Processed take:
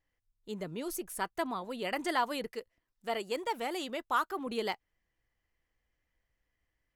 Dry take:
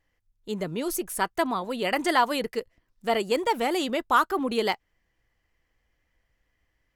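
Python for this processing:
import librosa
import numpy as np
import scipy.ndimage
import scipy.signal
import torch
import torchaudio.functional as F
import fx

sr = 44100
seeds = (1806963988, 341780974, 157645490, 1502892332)

y = fx.low_shelf(x, sr, hz=280.0, db=-6.5, at=(2.52, 4.47))
y = y * 10.0 ** (-8.5 / 20.0)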